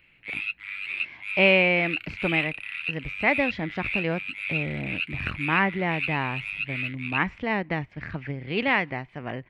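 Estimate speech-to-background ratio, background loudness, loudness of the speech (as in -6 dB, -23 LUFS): 4.0 dB, -30.5 LUFS, -26.5 LUFS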